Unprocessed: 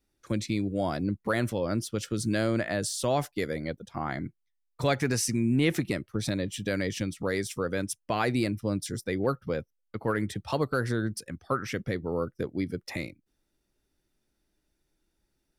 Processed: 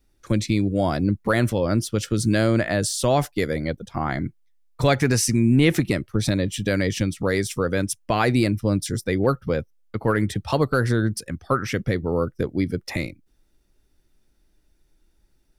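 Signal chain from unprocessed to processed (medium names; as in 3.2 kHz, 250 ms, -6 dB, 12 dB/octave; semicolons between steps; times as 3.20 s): bass shelf 64 Hz +12 dB; trim +6.5 dB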